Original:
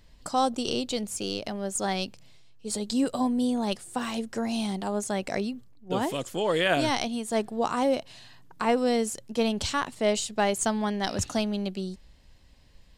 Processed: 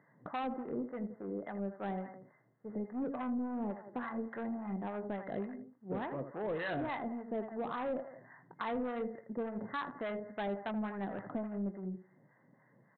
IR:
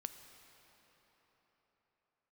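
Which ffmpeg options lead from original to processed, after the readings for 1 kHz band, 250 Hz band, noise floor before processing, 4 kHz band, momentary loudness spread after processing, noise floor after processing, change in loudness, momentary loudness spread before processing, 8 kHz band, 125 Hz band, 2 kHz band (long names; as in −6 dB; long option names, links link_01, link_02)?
−11.0 dB, −9.5 dB, −55 dBFS, −24.0 dB, 7 LU, −69 dBFS, −11.5 dB, 7 LU, below −40 dB, −8.5 dB, −11.5 dB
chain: -filter_complex "[0:a]asplit=2[link_01][link_02];[link_02]adelay=170,highpass=300,lowpass=3400,asoftclip=type=hard:threshold=-20dB,volume=-17dB[link_03];[link_01][link_03]amix=inputs=2:normalize=0,deesser=0.65,afftfilt=real='re*between(b*sr/4096,110,2100)':imag='im*between(b*sr/4096,110,2100)':win_size=4096:overlap=0.75,asplit=2[link_04][link_05];[link_05]aecho=0:1:20|80:0.237|0.282[link_06];[link_04][link_06]amix=inputs=2:normalize=0,aeval=exprs='0.251*(cos(1*acos(clip(val(0)/0.251,-1,1)))-cos(1*PI/2))+0.0141*(cos(4*acos(clip(val(0)/0.251,-1,1)))-cos(4*PI/2))+0.00631*(cos(7*acos(clip(val(0)/0.251,-1,1)))-cos(7*PI/2))':channel_layout=same,aresample=8000,asoftclip=type=tanh:threshold=-26dB,aresample=44100,acrossover=split=700[link_07][link_08];[link_07]aeval=exprs='val(0)*(1-0.7/2+0.7/2*cos(2*PI*3.5*n/s))':channel_layout=same[link_09];[link_08]aeval=exprs='val(0)*(1-0.7/2-0.7/2*cos(2*PI*3.5*n/s))':channel_layout=same[link_10];[link_09][link_10]amix=inputs=2:normalize=0,acompressor=threshold=-53dB:ratio=1.5,volume=4.5dB"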